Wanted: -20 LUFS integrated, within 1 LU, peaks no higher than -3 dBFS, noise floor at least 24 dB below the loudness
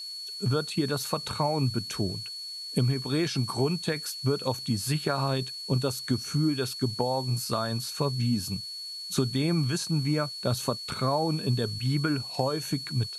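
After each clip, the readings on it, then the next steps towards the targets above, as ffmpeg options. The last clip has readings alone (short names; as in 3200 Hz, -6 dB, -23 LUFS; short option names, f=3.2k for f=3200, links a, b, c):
steady tone 4400 Hz; tone level -36 dBFS; noise floor -39 dBFS; noise floor target -53 dBFS; loudness -28.5 LUFS; peak -12.5 dBFS; loudness target -20.0 LUFS
-> -af "bandreject=f=4.4k:w=30"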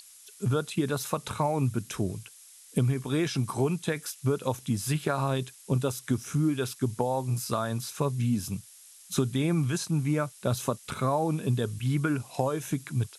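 steady tone none; noise floor -52 dBFS; noise floor target -54 dBFS
-> -af "afftdn=nr=6:nf=-52"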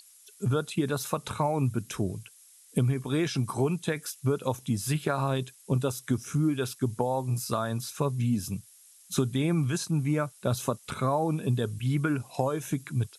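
noise floor -56 dBFS; loudness -29.5 LUFS; peak -13.0 dBFS; loudness target -20.0 LUFS
-> -af "volume=9.5dB"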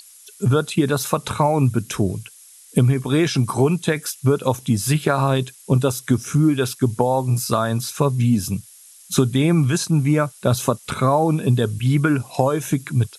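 loudness -20.0 LUFS; peak -3.5 dBFS; noise floor -46 dBFS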